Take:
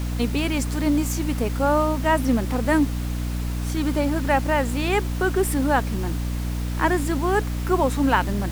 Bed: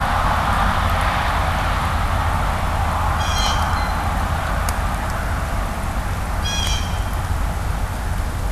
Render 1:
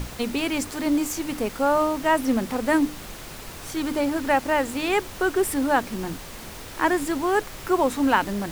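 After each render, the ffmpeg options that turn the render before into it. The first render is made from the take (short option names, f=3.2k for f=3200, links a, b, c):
-af "bandreject=f=60:t=h:w=6,bandreject=f=120:t=h:w=6,bandreject=f=180:t=h:w=6,bandreject=f=240:t=h:w=6,bandreject=f=300:t=h:w=6"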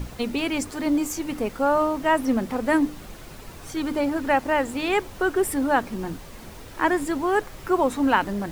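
-af "afftdn=nr=7:nf=-39"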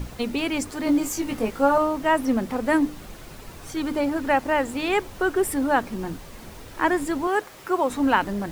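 -filter_complex "[0:a]asettb=1/sr,asplit=3[a][b][c];[a]atrim=end=0.854[d];[b]atrim=start=0.85:end=1.78,asetpts=PTS-STARTPTS,afade=t=in:d=0.004:c=qsin,afade=t=out:st=0.926:d=0.004:c=qsin,asplit=2[e][f];[f]adelay=18,volume=-3.5dB[g];[e][g]amix=inputs=2:normalize=0,atrim=end_sample=41013[h];[c]atrim=start=1.776[i];[d][h]acrossfade=d=0.004:c1=hsin:c2=qsin[j];[j][i]acrossfade=d=0.004:c1=qsin:c2=hsin,asettb=1/sr,asplit=3[k][l][m];[k]atrim=end=7.274[n];[l]atrim=start=7.27:end=7.9,asetpts=PTS-STARTPTS,afade=t=in:d=0.004:c=qsin,afade=t=out:st=0.626:d=0.004:c=qsin,highpass=f=340:p=1[o];[m]atrim=start=7.896[p];[n][o]acrossfade=d=0.004:c1=hsin:c2=qsin[q];[q][p]acrossfade=d=0.004:c1=qsin:c2=hsin"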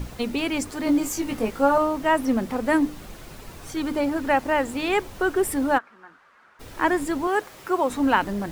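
-filter_complex "[0:a]asplit=3[a][b][c];[a]afade=t=out:st=5.77:d=0.02[d];[b]bandpass=f=1.4k:t=q:w=3.7,afade=t=in:st=5.77:d=0.02,afade=t=out:st=6.59:d=0.02[e];[c]afade=t=in:st=6.59:d=0.02[f];[d][e][f]amix=inputs=3:normalize=0"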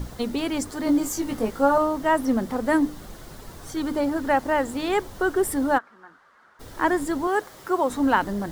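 -af "equalizer=f=2.5k:t=o:w=0.42:g=-8.5"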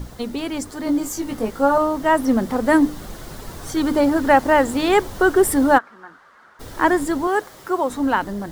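-af "dynaudnorm=f=440:g=9:m=11.5dB"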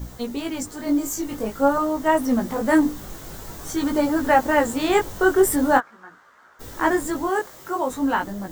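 -af "flanger=delay=16:depth=5.1:speed=0.47,aexciter=amount=1.4:drive=6.2:freq=6.2k"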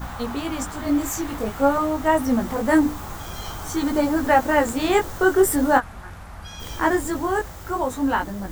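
-filter_complex "[1:a]volume=-16.5dB[a];[0:a][a]amix=inputs=2:normalize=0"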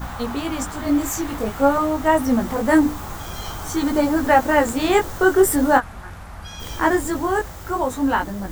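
-af "volume=2dB,alimiter=limit=-3dB:level=0:latency=1"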